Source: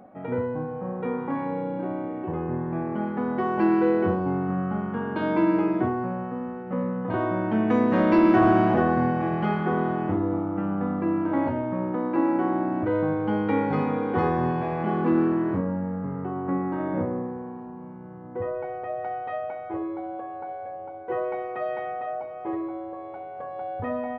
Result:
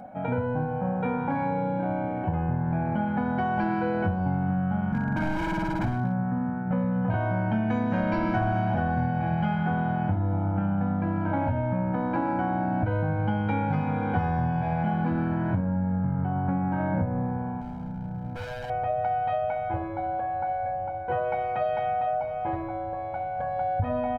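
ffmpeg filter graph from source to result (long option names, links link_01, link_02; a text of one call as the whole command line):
ffmpeg -i in.wav -filter_complex "[0:a]asettb=1/sr,asplit=3[link_01][link_02][link_03];[link_01]atrim=end=4.924[link_04];[link_02]atrim=start=4.92:end=6.71,asetpts=PTS-STARTPTS,afade=type=in:duration=0.004:curve=qsin,afade=type=out:start_time=1.786:duration=0.004:curve=qsin,highpass=frequency=100:width=0.5412,highpass=frequency=100:width=1.3066,equalizer=frequency=150:width_type=q:width=4:gain=7,equalizer=frequency=310:width_type=q:width=4:gain=7,equalizer=frequency=480:width_type=q:width=4:gain=-9,equalizer=frequency=820:width_type=q:width=4:gain=-4,lowpass=frequency=2000:width=0.5412,lowpass=frequency=2000:width=1.3066,volume=22.5dB,asoftclip=hard,volume=-22.5dB[link_05];[link_03]atrim=start=6.706[link_06];[link_04][link_05]acrossfade=duration=0.004:curve1=hsin:curve2=qsin[link_07];[link_07][link_06]acrossfade=duration=0.004:curve1=qsin:curve2=hsin,asettb=1/sr,asplit=3[link_08][link_09][link_10];[link_08]atrim=end=17.614[link_11];[link_09]atrim=start=17.61:end=18.7,asetpts=PTS-STARTPTS,afade=type=in:duration=0.004:curve=qsin,afade=type=out:start_time=1.086:duration=0.004:curve=qsin,bandreject=frequency=1100:width=21,adynamicsmooth=sensitivity=2:basefreq=1200,asoftclip=type=hard:threshold=-38dB[link_12];[link_10]atrim=start=18.696[link_13];[link_11][link_12]acrossfade=duration=0.004:curve1=hsin:curve2=qsin[link_14];[link_14][link_13]acrossfade=duration=0.004:curve1=qsin:curve2=hsin,asubboost=boost=3:cutoff=160,aecho=1:1:1.3:0.74,acompressor=threshold=-27dB:ratio=6,volume=4dB" out.wav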